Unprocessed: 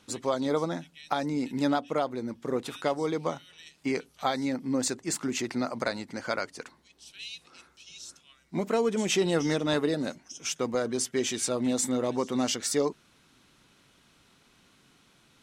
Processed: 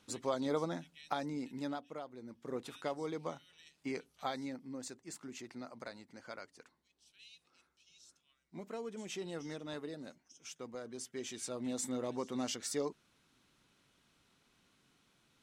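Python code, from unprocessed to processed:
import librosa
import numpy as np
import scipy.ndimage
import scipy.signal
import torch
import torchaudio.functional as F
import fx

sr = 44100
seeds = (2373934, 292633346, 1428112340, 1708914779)

y = fx.gain(x, sr, db=fx.line((1.05, -7.0), (2.07, -18.0), (2.56, -10.5), (4.35, -10.5), (4.75, -17.0), (10.82, -17.0), (11.91, -10.0)))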